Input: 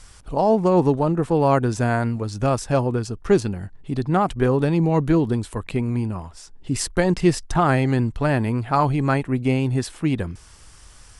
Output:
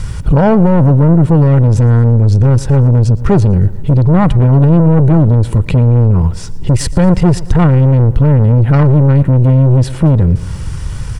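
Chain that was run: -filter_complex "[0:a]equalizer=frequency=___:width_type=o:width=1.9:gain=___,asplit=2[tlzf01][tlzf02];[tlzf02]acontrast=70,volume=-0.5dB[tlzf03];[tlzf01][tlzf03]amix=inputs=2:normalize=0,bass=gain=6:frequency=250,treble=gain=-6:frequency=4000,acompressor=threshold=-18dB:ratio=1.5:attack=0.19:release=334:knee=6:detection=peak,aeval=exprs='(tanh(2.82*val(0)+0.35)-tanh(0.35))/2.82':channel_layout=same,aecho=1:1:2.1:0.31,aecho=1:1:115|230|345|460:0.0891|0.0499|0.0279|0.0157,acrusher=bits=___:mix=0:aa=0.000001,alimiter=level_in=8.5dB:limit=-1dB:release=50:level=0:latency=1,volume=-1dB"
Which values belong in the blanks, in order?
140, 14, 10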